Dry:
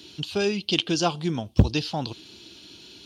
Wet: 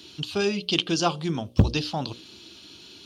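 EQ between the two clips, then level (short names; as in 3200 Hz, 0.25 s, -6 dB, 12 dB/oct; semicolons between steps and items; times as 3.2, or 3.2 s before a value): bell 1200 Hz +5 dB 0.27 oct; notches 60/120/180/240/300/360/420/480/540/600 Hz; 0.0 dB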